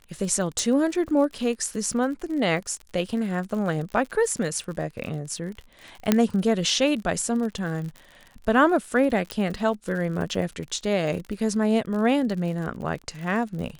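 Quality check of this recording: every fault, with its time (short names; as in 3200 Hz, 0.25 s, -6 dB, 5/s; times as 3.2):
crackle 57/s -33 dBFS
0.59 pop
6.12 pop -4 dBFS
9.31 pop -14 dBFS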